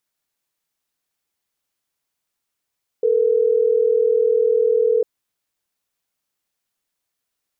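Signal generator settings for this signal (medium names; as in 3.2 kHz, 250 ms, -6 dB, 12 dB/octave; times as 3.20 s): call progress tone ringback tone, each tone -16.5 dBFS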